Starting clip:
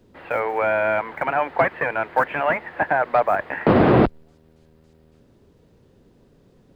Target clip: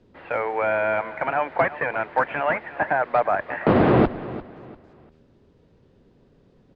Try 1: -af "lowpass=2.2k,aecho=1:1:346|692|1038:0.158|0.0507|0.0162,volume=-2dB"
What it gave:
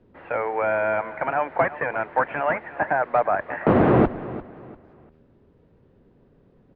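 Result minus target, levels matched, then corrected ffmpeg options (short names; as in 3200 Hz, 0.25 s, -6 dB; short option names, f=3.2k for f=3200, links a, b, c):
4000 Hz band -6.0 dB
-af "lowpass=4.9k,aecho=1:1:346|692|1038:0.158|0.0507|0.0162,volume=-2dB"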